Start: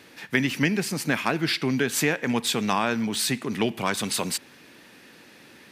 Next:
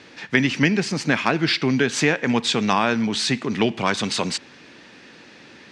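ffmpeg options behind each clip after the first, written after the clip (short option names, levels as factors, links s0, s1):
-af "lowpass=f=6700:w=0.5412,lowpass=f=6700:w=1.3066,volume=1.68"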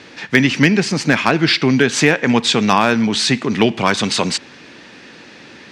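-af "asoftclip=type=hard:threshold=0.422,volume=2"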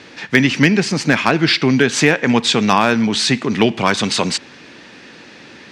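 -af anull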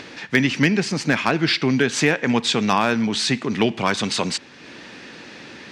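-af "acompressor=mode=upward:threshold=0.0447:ratio=2.5,volume=0.562"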